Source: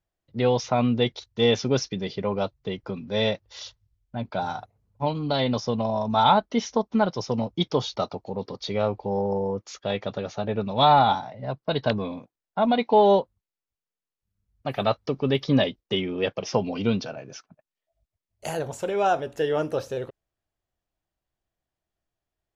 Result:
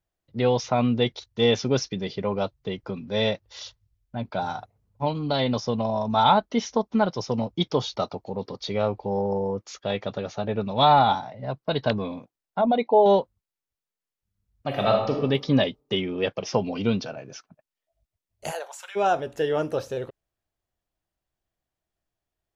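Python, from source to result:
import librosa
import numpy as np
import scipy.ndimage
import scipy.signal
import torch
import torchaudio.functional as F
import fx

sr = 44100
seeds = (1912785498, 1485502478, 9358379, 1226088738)

y = fx.envelope_sharpen(x, sr, power=1.5, at=(12.61, 13.06))
y = fx.reverb_throw(y, sr, start_s=14.67, length_s=0.54, rt60_s=0.83, drr_db=0.5)
y = fx.highpass(y, sr, hz=fx.line((18.5, 440.0), (18.95, 1500.0)), slope=24, at=(18.5, 18.95), fade=0.02)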